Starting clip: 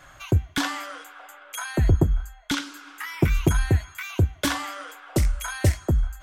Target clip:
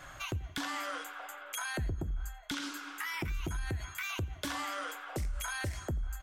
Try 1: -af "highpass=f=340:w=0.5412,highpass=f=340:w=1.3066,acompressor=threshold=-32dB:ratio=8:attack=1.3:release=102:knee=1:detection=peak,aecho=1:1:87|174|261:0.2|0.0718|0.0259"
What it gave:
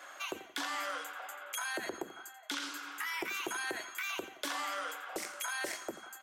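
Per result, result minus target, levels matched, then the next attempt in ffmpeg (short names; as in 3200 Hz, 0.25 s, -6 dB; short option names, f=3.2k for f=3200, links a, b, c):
echo-to-direct +10 dB; 250 Hz band -4.0 dB
-af "highpass=f=340:w=0.5412,highpass=f=340:w=1.3066,acompressor=threshold=-32dB:ratio=8:attack=1.3:release=102:knee=1:detection=peak,aecho=1:1:87|174:0.0631|0.0227"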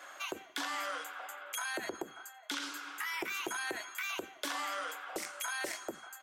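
250 Hz band -4.0 dB
-af "acompressor=threshold=-32dB:ratio=8:attack=1.3:release=102:knee=1:detection=peak,aecho=1:1:87|174:0.0631|0.0227"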